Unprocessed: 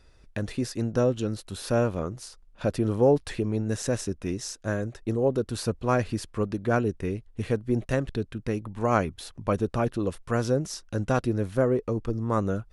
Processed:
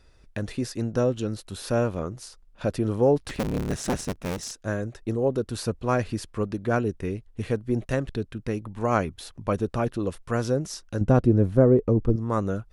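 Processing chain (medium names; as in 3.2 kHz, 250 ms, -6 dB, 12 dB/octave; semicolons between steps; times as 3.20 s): 3.20–4.51 s: cycle switcher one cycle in 3, inverted; 11.01–12.16 s: tilt shelf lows +8.5 dB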